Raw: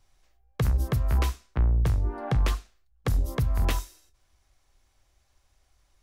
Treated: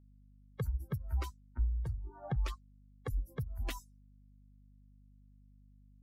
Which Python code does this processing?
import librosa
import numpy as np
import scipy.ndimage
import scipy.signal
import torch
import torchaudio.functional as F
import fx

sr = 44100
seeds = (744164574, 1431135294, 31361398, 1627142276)

y = fx.bin_expand(x, sr, power=3.0)
y = fx.add_hum(y, sr, base_hz=50, snr_db=22)
y = y * 10.0 ** (-6.5 / 20.0)